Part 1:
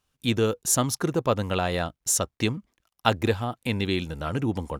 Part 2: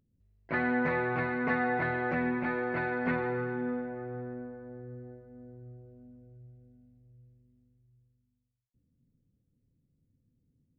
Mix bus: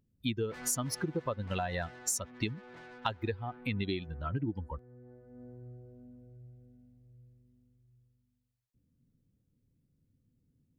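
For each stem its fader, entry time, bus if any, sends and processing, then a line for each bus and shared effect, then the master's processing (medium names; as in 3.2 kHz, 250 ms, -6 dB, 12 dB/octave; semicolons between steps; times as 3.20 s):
+2.5 dB, 0.00 s, no send, expander on every frequency bin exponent 2
0.0 dB, 0.00 s, no send, saturation -35 dBFS, distortion -7 dB; auto duck -13 dB, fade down 1.65 s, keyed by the first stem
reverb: none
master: compression 8:1, threshold -30 dBFS, peak gain reduction 15 dB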